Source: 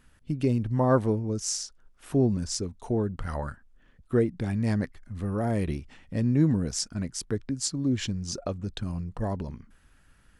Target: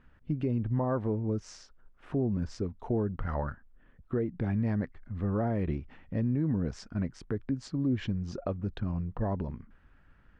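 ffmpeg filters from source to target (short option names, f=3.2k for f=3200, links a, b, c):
-af "lowpass=2k,alimiter=limit=-21dB:level=0:latency=1:release=176"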